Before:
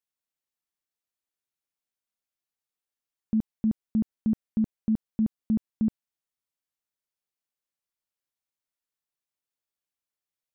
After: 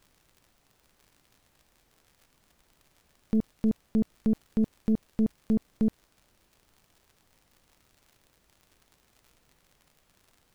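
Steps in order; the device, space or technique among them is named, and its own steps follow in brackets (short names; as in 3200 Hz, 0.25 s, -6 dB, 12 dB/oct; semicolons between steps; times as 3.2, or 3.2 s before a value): record under a worn stylus (tracing distortion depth 0.32 ms; crackle 84/s -46 dBFS; pink noise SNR 34 dB)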